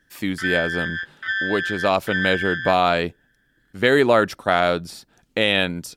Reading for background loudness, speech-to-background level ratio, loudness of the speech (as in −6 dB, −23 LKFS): −25.5 LKFS, 4.5 dB, −21.0 LKFS